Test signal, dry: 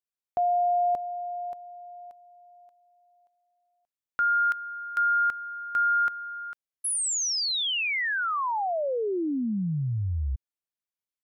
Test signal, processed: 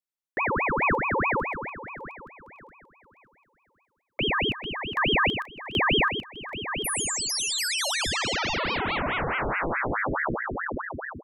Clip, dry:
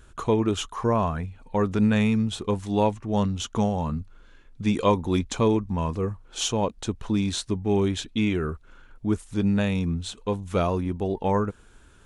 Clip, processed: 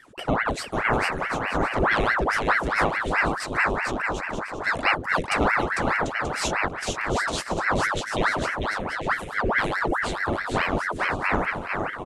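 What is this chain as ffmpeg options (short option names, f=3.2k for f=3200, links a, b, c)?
-af "aecho=1:1:450|742.5|932.6|1056|1137:0.631|0.398|0.251|0.158|0.1,aeval=exprs='val(0)*sin(2*PI*1000*n/s+1000*0.85/4.7*sin(2*PI*4.7*n/s))':c=same,volume=1dB"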